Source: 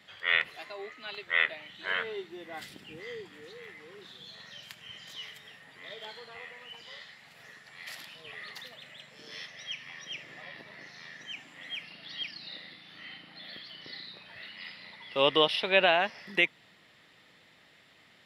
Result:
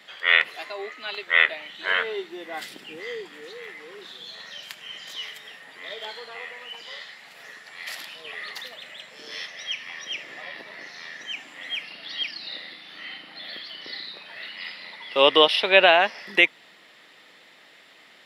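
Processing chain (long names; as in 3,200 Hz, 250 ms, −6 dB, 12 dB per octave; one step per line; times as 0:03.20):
high-pass filter 290 Hz 12 dB per octave
level +8 dB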